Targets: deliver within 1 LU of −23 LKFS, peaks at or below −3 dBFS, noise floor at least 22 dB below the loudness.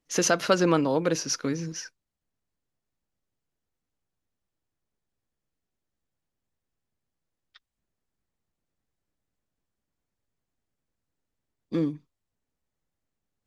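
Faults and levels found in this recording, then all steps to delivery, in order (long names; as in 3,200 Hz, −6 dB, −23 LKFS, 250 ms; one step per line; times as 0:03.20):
integrated loudness −26.0 LKFS; sample peak −7.5 dBFS; target loudness −23.0 LKFS
→ level +3 dB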